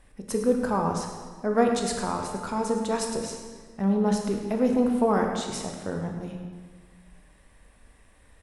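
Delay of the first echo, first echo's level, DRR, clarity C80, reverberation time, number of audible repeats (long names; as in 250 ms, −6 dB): 106 ms, −12.5 dB, 2.0 dB, 5.5 dB, 1.5 s, 1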